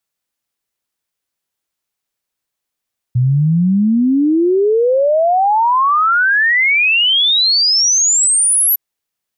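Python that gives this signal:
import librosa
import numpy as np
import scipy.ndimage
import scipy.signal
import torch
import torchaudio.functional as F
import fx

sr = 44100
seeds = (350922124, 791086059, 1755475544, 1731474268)

y = fx.ess(sr, length_s=5.61, from_hz=120.0, to_hz=12000.0, level_db=-9.5)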